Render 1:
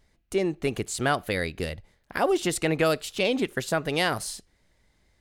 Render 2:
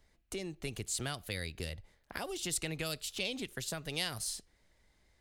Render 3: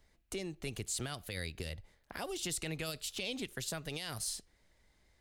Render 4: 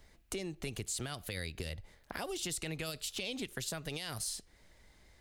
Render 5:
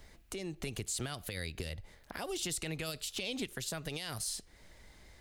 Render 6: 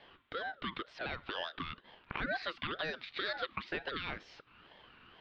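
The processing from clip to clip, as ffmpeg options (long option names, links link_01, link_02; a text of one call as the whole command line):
ffmpeg -i in.wav -filter_complex "[0:a]acrossover=split=160|3000[link_01][link_02][link_03];[link_02]acompressor=threshold=-39dB:ratio=4[link_04];[link_01][link_04][link_03]amix=inputs=3:normalize=0,equalizer=frequency=150:width_type=o:width=2:gain=-3.5,volume=-3dB" out.wav
ffmpeg -i in.wav -af "alimiter=level_in=2.5dB:limit=-24dB:level=0:latency=1:release=16,volume=-2.5dB" out.wav
ffmpeg -i in.wav -af "acompressor=threshold=-49dB:ratio=2,volume=7.5dB" out.wav
ffmpeg -i in.wav -af "alimiter=level_in=7dB:limit=-24dB:level=0:latency=1:release=446,volume=-7dB,volume=5dB" out.wav
ffmpeg -i in.wav -af "highpass=frequency=340:width_type=q:width=0.5412,highpass=frequency=340:width_type=q:width=1.307,lowpass=frequency=2900:width_type=q:width=0.5176,lowpass=frequency=2900:width_type=q:width=0.7071,lowpass=frequency=2900:width_type=q:width=1.932,afreqshift=53,aeval=exprs='val(0)*sin(2*PI*900*n/s+900*0.3/2.1*sin(2*PI*2.1*n/s))':channel_layout=same,volume=7.5dB" out.wav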